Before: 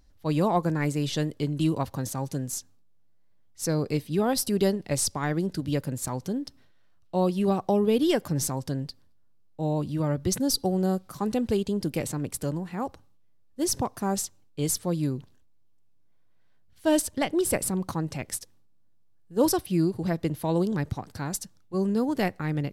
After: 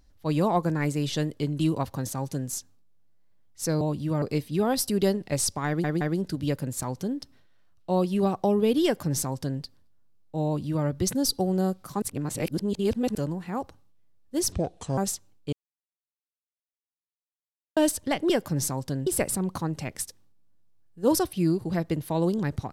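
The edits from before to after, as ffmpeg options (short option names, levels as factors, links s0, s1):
-filter_complex "[0:a]asplit=13[s0][s1][s2][s3][s4][s5][s6][s7][s8][s9][s10][s11][s12];[s0]atrim=end=3.812[s13];[s1]atrim=start=9.698:end=10.112[s14];[s2]atrim=start=3.808:end=5.432[s15];[s3]atrim=start=5.258:end=5.432[s16];[s4]atrim=start=5.258:end=11.272[s17];[s5]atrim=start=11.268:end=12.402,asetpts=PTS-STARTPTS,areverse[s18];[s6]atrim=start=12.398:end=13.774[s19];[s7]atrim=start=13.77:end=14.08,asetpts=PTS-STARTPTS,asetrate=29988,aresample=44100,atrim=end_sample=20104,asetpts=PTS-STARTPTS[s20];[s8]atrim=start=14.076:end=14.63,asetpts=PTS-STARTPTS,afade=t=out:st=0.55:d=0.004:c=hsin[s21];[s9]atrim=start=14.63:end=16.87,asetpts=PTS-STARTPTS,volume=0[s22];[s10]atrim=start=16.87:end=17.402,asetpts=PTS-STARTPTS,afade=t=in:d=0.004:c=hsin[s23];[s11]atrim=start=8.088:end=8.862[s24];[s12]atrim=start=17.398[s25];[s13][s14]acrossfade=d=0.004:c1=hsin:c2=hsin[s26];[s26][s15]acrossfade=d=0.004:c1=hsin:c2=hsin[s27];[s27][s16]acrossfade=d=0.004:c1=hsin:c2=hsin[s28];[s28][s17]acrossfade=d=0.004:c1=hsin:c2=hsin[s29];[s29][s18]acrossfade=d=0.004:c1=hsin:c2=hsin[s30];[s30][s19]acrossfade=d=0.004:c1=hsin:c2=hsin[s31];[s31][s20]acrossfade=d=0.004:c1=hsin:c2=hsin[s32];[s21][s22][s23]concat=n=3:v=0:a=1[s33];[s32][s33]acrossfade=d=0.004:c1=hsin:c2=hsin[s34];[s34][s24]acrossfade=d=0.004:c1=hsin:c2=hsin[s35];[s35][s25]acrossfade=d=0.004:c1=hsin:c2=hsin"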